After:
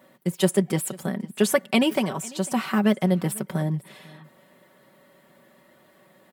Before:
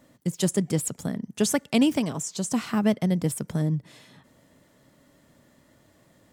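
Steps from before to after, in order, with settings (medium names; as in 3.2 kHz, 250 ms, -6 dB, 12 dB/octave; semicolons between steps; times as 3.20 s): high-pass 460 Hz 6 dB/octave; peaking EQ 6.4 kHz -13 dB 1.2 oct; comb 5.3 ms; delay 498 ms -22.5 dB; trim +6 dB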